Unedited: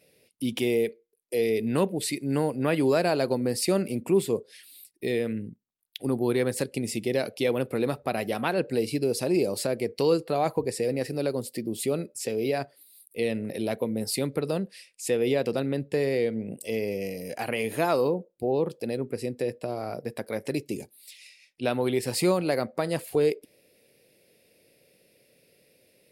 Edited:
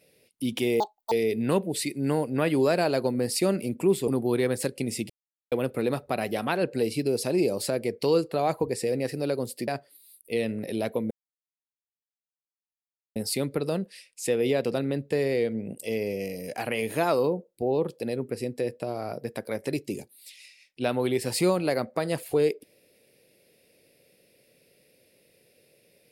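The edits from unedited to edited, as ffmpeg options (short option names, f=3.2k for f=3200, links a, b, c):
-filter_complex "[0:a]asplit=8[a][b][c][d][e][f][g][h];[a]atrim=end=0.804[i];[b]atrim=start=0.8:end=1.38,asetpts=PTS-STARTPTS,asetrate=80703,aresample=44100,atrim=end_sample=13977,asetpts=PTS-STARTPTS[j];[c]atrim=start=1.376:end=4.342[k];[d]atrim=start=6.038:end=7.06,asetpts=PTS-STARTPTS,afade=t=out:st=1.018:d=0.004:c=hsin[l];[e]atrim=start=7.06:end=7.48,asetpts=PTS-STARTPTS,volume=0[m];[f]atrim=start=7.48:end=11.642,asetpts=PTS-STARTPTS,afade=t=in:d=0.004:c=hsin[n];[g]atrim=start=12.538:end=13.97,asetpts=PTS-STARTPTS,afade=t=out:st=1.428:d=0.004:c=hsin,apad=pad_dur=2.05[o];[h]atrim=start=13.97,asetpts=PTS-STARTPTS,afade=t=in:d=0.004:c=hsin[p];[i][j]acrossfade=d=0.004:c1=hsin:c2=hsin[q];[q][k]acrossfade=d=0.004:c1=hsin:c2=hsin[r];[l][m][n]concat=n=3:v=0:a=1[s];[r][s]acrossfade=d=0.004:c1=hsin:c2=hsin[t];[o][p]concat=n=2:v=0:a=1[u];[t][u]acrossfade=d=0.004:c1=hsin:c2=hsin"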